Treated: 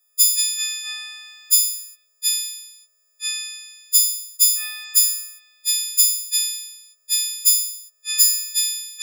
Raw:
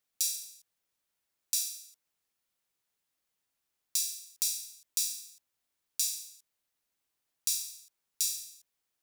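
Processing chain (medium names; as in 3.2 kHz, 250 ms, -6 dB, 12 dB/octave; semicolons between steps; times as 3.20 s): partials quantised in pitch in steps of 6 st; ever faster or slower copies 96 ms, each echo -6 st, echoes 3, each echo -6 dB; trim +3 dB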